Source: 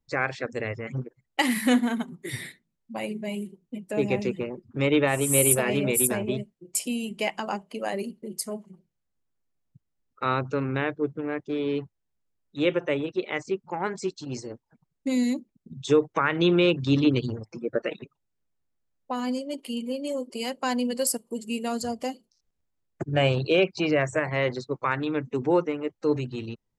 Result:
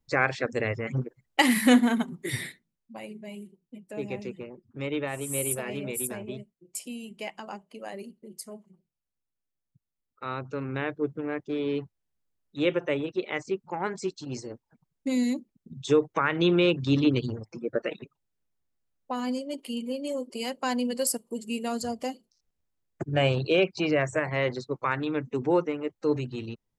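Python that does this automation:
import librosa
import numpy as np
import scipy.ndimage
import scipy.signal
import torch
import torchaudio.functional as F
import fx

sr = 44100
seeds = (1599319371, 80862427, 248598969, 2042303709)

y = fx.gain(x, sr, db=fx.line((2.4, 2.5), (3.02, -9.0), (10.26, -9.0), (11.04, -1.5)))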